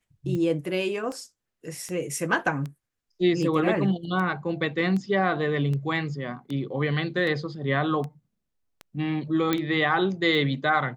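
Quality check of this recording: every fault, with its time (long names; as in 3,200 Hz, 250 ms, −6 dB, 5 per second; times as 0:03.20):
scratch tick 78 rpm −22 dBFS
0:09.53: click −10 dBFS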